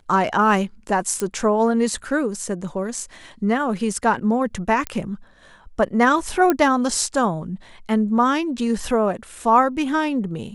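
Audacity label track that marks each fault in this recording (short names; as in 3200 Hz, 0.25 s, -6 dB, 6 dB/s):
1.200000	1.200000	pop -9 dBFS
4.870000	4.870000	pop -9 dBFS
6.500000	6.500000	pop -5 dBFS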